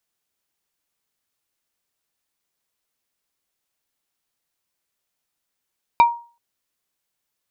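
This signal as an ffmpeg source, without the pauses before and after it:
ffmpeg -f lavfi -i "aevalsrc='0.501*pow(10,-3*t/0.37)*sin(2*PI*942*t)+0.158*pow(10,-3*t/0.123)*sin(2*PI*2355*t)+0.0501*pow(10,-3*t/0.07)*sin(2*PI*3768*t)+0.0158*pow(10,-3*t/0.054)*sin(2*PI*4710*t)+0.00501*pow(10,-3*t/0.039)*sin(2*PI*6123*t)':duration=0.38:sample_rate=44100" out.wav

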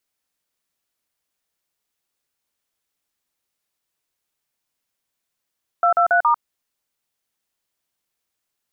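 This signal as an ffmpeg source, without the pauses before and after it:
ffmpeg -f lavfi -i "aevalsrc='0.168*clip(min(mod(t,0.139),0.097-mod(t,0.139))/0.002,0,1)*(eq(floor(t/0.139),0)*(sin(2*PI*697*mod(t,0.139))+sin(2*PI*1336*mod(t,0.139)))+eq(floor(t/0.139),1)*(sin(2*PI*697*mod(t,0.139))+sin(2*PI*1336*mod(t,0.139)))+eq(floor(t/0.139),2)*(sin(2*PI*697*mod(t,0.139))+sin(2*PI*1477*mod(t,0.139)))+eq(floor(t/0.139),3)*(sin(2*PI*941*mod(t,0.139))+sin(2*PI*1209*mod(t,0.139))))':duration=0.556:sample_rate=44100" out.wav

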